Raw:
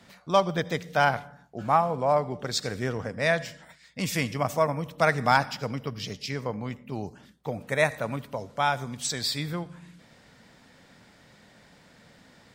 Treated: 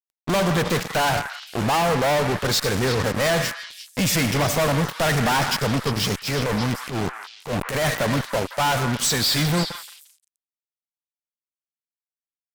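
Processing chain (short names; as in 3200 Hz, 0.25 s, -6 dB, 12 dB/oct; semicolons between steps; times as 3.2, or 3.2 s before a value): fuzz box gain 44 dB, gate -39 dBFS; delay with a stepping band-pass 0.175 s, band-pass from 1500 Hz, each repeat 1.4 oct, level -6 dB; 6.17–7.9 transient shaper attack -11 dB, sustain +5 dB; gain -5 dB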